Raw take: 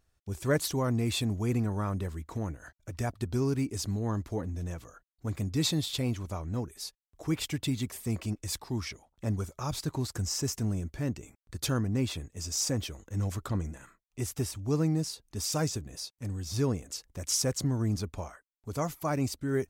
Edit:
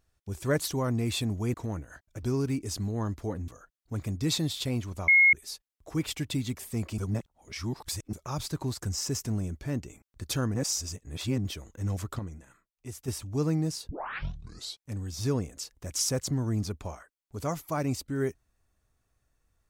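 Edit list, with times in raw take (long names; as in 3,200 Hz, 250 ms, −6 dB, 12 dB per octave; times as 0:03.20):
0:01.54–0:02.26: remove
0:02.95–0:03.31: remove
0:04.56–0:04.81: remove
0:06.41–0:06.66: beep over 2,160 Hz −15.5 dBFS
0:08.31–0:09.46: reverse
0:11.88–0:12.78: reverse
0:13.52–0:14.41: clip gain −7 dB
0:15.22: tape start 0.96 s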